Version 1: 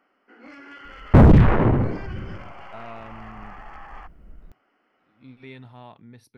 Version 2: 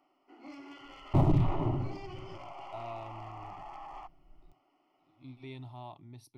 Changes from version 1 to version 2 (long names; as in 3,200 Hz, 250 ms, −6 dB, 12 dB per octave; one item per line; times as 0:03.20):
second sound −10.5 dB
master: add phaser with its sweep stopped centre 320 Hz, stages 8